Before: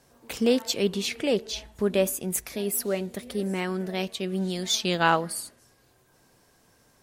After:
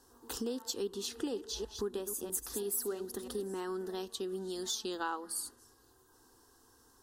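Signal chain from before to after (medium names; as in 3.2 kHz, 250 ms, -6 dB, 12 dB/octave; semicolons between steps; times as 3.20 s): 1.16–3.44 s: chunks repeated in reverse 163 ms, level -10 dB; compression 5:1, threshold -31 dBFS, peak gain reduction 14 dB; static phaser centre 610 Hz, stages 6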